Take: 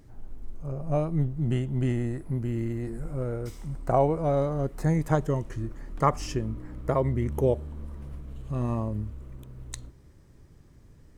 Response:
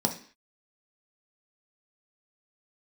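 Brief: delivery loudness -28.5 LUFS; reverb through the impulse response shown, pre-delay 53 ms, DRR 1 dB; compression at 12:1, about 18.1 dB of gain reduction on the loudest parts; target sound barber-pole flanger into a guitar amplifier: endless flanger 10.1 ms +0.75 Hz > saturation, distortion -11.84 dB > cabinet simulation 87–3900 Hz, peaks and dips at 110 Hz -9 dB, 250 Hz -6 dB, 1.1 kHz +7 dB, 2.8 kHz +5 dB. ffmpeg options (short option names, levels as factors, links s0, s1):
-filter_complex "[0:a]acompressor=threshold=0.0158:ratio=12,asplit=2[s0][s1];[1:a]atrim=start_sample=2205,adelay=53[s2];[s1][s2]afir=irnorm=-1:irlink=0,volume=0.335[s3];[s0][s3]amix=inputs=2:normalize=0,asplit=2[s4][s5];[s5]adelay=10.1,afreqshift=0.75[s6];[s4][s6]amix=inputs=2:normalize=1,asoftclip=threshold=0.0168,highpass=87,equalizer=f=110:t=q:w=4:g=-9,equalizer=f=250:t=q:w=4:g=-6,equalizer=f=1100:t=q:w=4:g=7,equalizer=f=2800:t=q:w=4:g=5,lowpass=f=3900:w=0.5412,lowpass=f=3900:w=1.3066,volume=6.68"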